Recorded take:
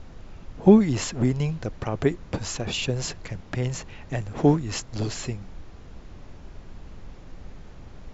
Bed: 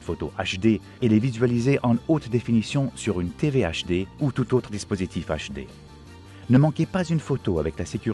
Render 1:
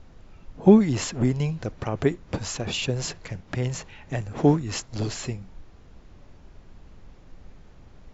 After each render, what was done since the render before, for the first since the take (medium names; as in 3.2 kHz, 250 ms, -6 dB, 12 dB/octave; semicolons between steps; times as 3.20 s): noise print and reduce 6 dB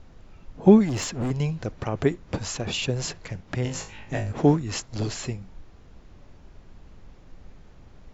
0.85–1.31 s: hard clipper -23.5 dBFS; 3.63–4.32 s: flutter echo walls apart 3.3 m, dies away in 0.29 s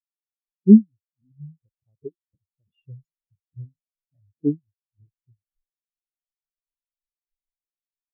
level rider gain up to 8.5 dB; spectral contrast expander 4:1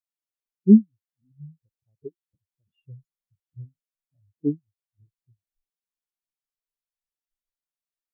trim -2.5 dB